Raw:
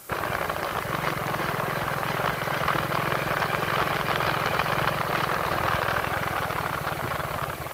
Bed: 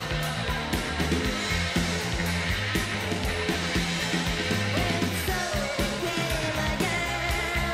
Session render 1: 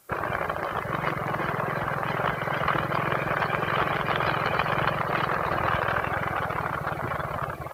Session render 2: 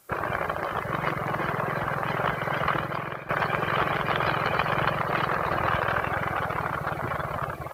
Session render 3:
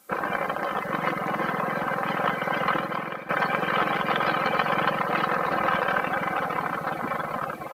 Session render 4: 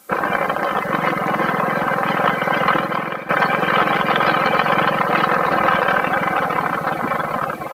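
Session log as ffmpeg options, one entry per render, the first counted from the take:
-af "afftdn=nr=13:nf=-33"
-filter_complex "[0:a]asplit=2[s0][s1];[s0]atrim=end=3.29,asetpts=PTS-STARTPTS,afade=t=out:st=2.65:d=0.64:silence=0.199526[s2];[s1]atrim=start=3.29,asetpts=PTS-STARTPTS,afade=t=in:d=0.004:c=hsin:silence=0.199526[s3];[s2][s3]concat=n=2:v=0:a=1"
-af "lowshelf=f=120:t=q:w=1.5:g=-12,aecho=1:1:3.9:0.58"
-af "volume=2.51,alimiter=limit=0.708:level=0:latency=1"

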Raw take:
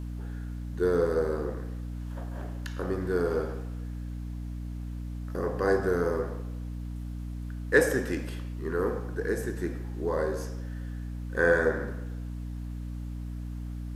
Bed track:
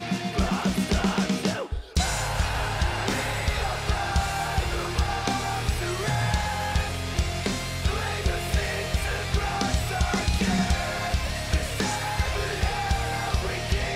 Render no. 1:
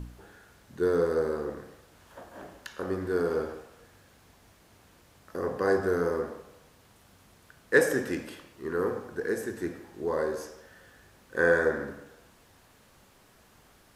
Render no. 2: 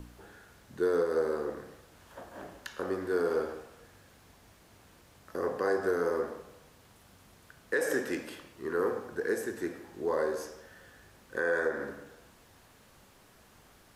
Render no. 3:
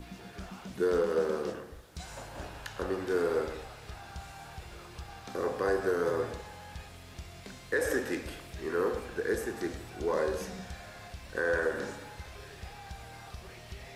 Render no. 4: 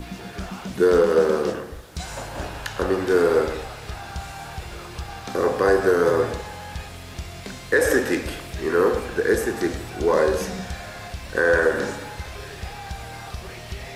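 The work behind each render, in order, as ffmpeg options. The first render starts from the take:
-af "bandreject=f=60:t=h:w=4,bandreject=f=120:t=h:w=4,bandreject=f=180:t=h:w=4,bandreject=f=240:t=h:w=4,bandreject=f=300:t=h:w=4"
-filter_complex "[0:a]acrossover=split=260|3400[s0][s1][s2];[s0]acompressor=threshold=0.00355:ratio=4[s3];[s3][s1][s2]amix=inputs=3:normalize=0,alimiter=limit=0.112:level=0:latency=1:release=168"
-filter_complex "[1:a]volume=0.106[s0];[0:a][s0]amix=inputs=2:normalize=0"
-af "volume=3.55"

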